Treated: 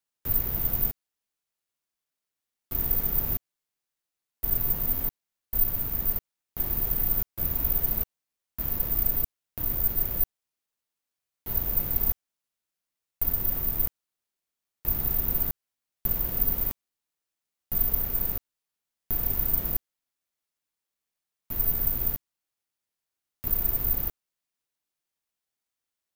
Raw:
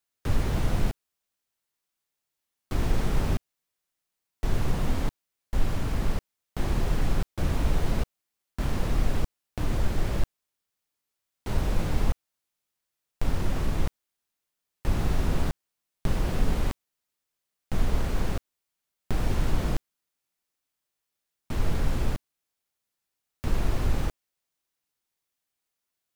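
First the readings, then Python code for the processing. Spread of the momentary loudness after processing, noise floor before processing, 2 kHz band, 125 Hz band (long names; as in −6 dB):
8 LU, −85 dBFS, −8.5 dB, −8.5 dB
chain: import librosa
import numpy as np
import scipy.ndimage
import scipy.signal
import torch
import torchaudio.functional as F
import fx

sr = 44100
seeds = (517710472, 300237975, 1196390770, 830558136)

y = (np.kron(x[::3], np.eye(3)[0]) * 3)[:len(x)]
y = F.gain(torch.from_numpy(y), -8.5).numpy()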